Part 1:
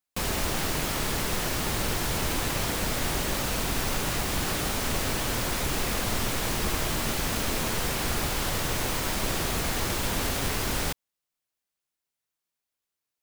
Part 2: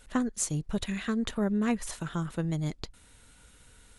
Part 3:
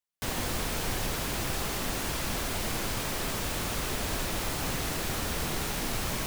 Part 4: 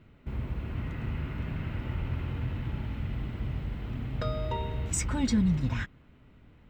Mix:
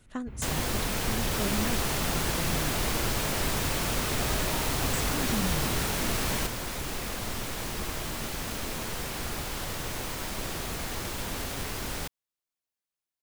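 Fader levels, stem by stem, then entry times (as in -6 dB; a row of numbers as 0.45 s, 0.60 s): -6.0 dB, -7.0 dB, +1.5 dB, -7.0 dB; 1.15 s, 0.00 s, 0.20 s, 0.00 s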